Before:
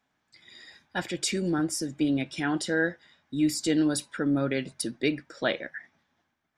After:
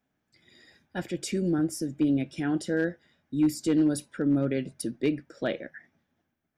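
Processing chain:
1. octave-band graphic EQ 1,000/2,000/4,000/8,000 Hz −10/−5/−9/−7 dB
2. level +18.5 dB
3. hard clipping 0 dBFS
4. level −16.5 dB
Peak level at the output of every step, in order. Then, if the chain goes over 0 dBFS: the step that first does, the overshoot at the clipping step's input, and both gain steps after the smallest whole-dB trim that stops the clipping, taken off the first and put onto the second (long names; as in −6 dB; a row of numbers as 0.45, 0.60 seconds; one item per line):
−15.5, +3.0, 0.0, −16.5 dBFS
step 2, 3.0 dB
step 2 +15.5 dB, step 4 −13.5 dB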